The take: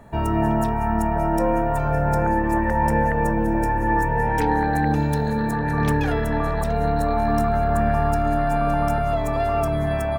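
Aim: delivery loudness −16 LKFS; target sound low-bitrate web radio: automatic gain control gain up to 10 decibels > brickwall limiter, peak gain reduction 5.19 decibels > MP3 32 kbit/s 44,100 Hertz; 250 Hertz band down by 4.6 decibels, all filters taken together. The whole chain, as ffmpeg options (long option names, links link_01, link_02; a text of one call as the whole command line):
ffmpeg -i in.wav -af "equalizer=frequency=250:width_type=o:gain=-6.5,dynaudnorm=maxgain=10dB,alimiter=limit=-14.5dB:level=0:latency=1,volume=9dB" -ar 44100 -c:a libmp3lame -b:a 32k out.mp3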